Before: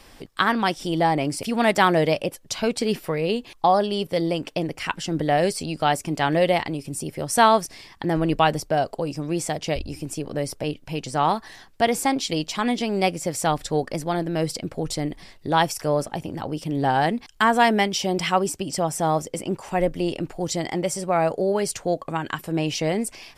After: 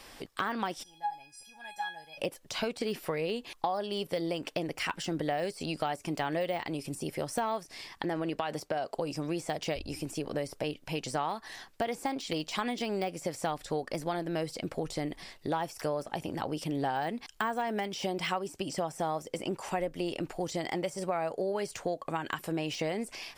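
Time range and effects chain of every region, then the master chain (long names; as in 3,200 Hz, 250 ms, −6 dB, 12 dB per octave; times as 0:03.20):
0:00.82–0:02.17: tuned comb filter 830 Hz, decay 0.3 s, mix 100% + surface crackle 530 per second −65 dBFS
0:08.04–0:08.95: high-pass filter 170 Hz 6 dB per octave + high-shelf EQ 8,200 Hz −6 dB + downward compressor 12 to 1, threshold −20 dBFS
whole clip: de-essing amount 80%; low-shelf EQ 270 Hz −8.5 dB; downward compressor 6 to 1, threshold −29 dBFS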